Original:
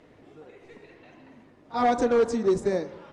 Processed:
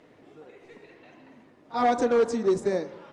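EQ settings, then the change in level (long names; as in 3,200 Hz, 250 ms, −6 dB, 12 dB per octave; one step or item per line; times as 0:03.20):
parametric band 63 Hz −7.5 dB 0.77 octaves
low-shelf EQ 91 Hz −8 dB
0.0 dB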